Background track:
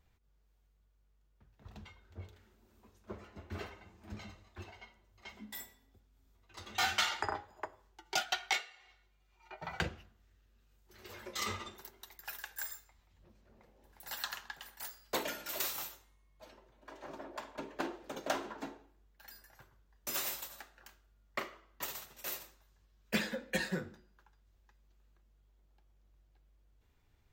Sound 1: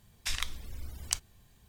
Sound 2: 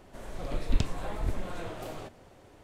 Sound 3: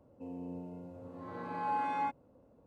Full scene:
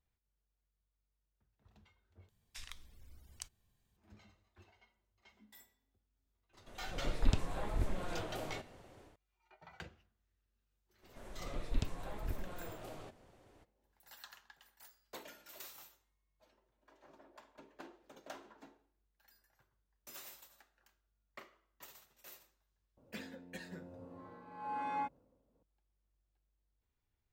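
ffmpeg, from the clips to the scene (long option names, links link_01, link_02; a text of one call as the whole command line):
ffmpeg -i bed.wav -i cue0.wav -i cue1.wav -i cue2.wav -filter_complex "[2:a]asplit=2[link_01][link_02];[0:a]volume=-14.5dB[link_03];[link_01]dynaudnorm=framelen=250:gausssize=3:maxgain=10dB[link_04];[3:a]tremolo=f=1:d=0.72[link_05];[link_03]asplit=2[link_06][link_07];[link_06]atrim=end=2.294[link_08];[1:a]atrim=end=1.68,asetpts=PTS-STARTPTS,volume=-16.5dB[link_09];[link_07]atrim=start=3.966[link_10];[link_04]atrim=end=2.63,asetpts=PTS-STARTPTS,volume=-13dB,afade=type=in:duration=0.004:curve=hsin,afade=type=out:start_time=2.626:duration=0.004:curve=hsin,adelay=6530[link_11];[link_02]atrim=end=2.63,asetpts=PTS-STARTPTS,volume=-9dB,afade=type=in:duration=0.02,afade=type=out:start_time=2.61:duration=0.02,adelay=11020[link_12];[link_05]atrim=end=2.66,asetpts=PTS-STARTPTS,volume=-3.5dB,afade=type=in:duration=0.004:curve=hsin,afade=type=out:start_time=2.656:duration=0.004:curve=hsin,adelay=22970[link_13];[link_08][link_09]acrossfade=duration=0.004:curve1=hsin:curve2=hsin[link_14];[link_14][link_10]acrossfade=duration=0.004:curve1=hsin:curve2=hsin[link_15];[link_15][link_11][link_12][link_13]amix=inputs=4:normalize=0" out.wav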